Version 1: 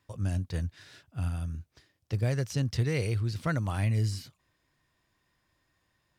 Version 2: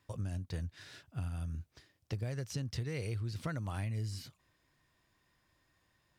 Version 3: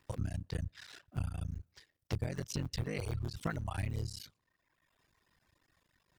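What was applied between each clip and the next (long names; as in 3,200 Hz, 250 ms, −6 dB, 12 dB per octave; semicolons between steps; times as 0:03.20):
downward compressor 6 to 1, threshold −35 dBFS, peak gain reduction 11.5 dB
sub-harmonics by changed cycles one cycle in 3, muted; tape delay 119 ms, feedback 54%, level −24 dB, low-pass 2,400 Hz; reverb reduction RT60 1.1 s; level +4 dB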